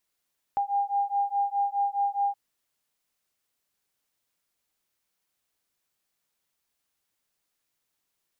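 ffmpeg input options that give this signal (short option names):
-f lavfi -i "aevalsrc='0.0447*(sin(2*PI*802*t)+sin(2*PI*806.8*t))':d=1.77:s=44100"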